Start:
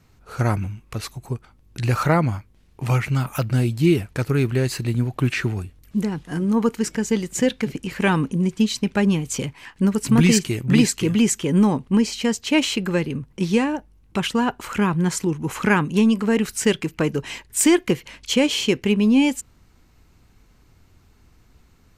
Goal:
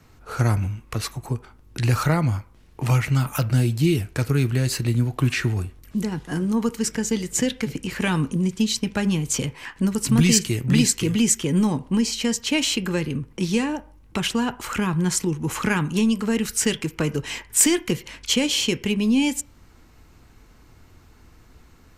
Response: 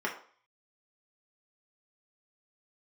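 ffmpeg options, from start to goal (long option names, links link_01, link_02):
-filter_complex "[0:a]acrossover=split=170|3000[link_01][link_02][link_03];[link_02]acompressor=threshold=-37dB:ratio=2[link_04];[link_01][link_04][link_03]amix=inputs=3:normalize=0,asplit=2[link_05][link_06];[1:a]atrim=start_sample=2205,lowpass=4400[link_07];[link_06][link_07]afir=irnorm=-1:irlink=0,volume=-16dB[link_08];[link_05][link_08]amix=inputs=2:normalize=0,volume=4dB"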